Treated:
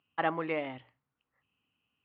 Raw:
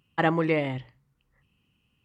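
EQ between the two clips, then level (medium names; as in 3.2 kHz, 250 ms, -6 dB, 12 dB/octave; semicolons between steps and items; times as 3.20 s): cabinet simulation 130–3600 Hz, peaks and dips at 140 Hz -9 dB, 200 Hz -8 dB, 360 Hz -7 dB, 520 Hz -5 dB, 960 Hz -3 dB, 1.9 kHz -4 dB; bass shelf 370 Hz -9 dB; treble shelf 2.3 kHz -9.5 dB; 0.0 dB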